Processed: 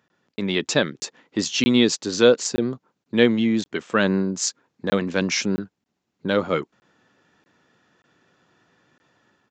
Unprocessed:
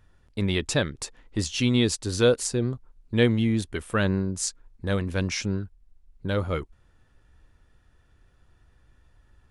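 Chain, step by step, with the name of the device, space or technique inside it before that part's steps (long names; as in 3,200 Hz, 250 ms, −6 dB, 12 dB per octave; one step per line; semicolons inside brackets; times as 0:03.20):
call with lost packets (high-pass filter 170 Hz 24 dB per octave; downsampling to 16,000 Hz; automatic gain control gain up to 7 dB; dropped packets)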